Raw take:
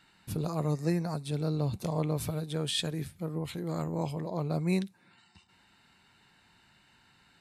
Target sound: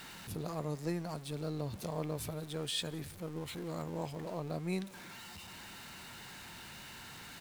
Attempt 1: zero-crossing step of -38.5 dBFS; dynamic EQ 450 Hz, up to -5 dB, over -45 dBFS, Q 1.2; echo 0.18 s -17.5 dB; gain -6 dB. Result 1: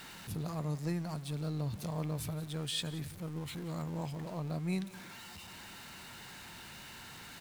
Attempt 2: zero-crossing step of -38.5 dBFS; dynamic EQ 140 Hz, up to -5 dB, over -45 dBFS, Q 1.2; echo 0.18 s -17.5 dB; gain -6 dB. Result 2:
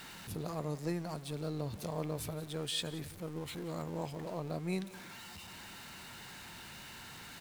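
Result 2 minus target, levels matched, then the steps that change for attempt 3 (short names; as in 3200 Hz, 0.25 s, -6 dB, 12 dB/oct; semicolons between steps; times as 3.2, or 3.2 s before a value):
echo-to-direct +7 dB
change: echo 0.18 s -24.5 dB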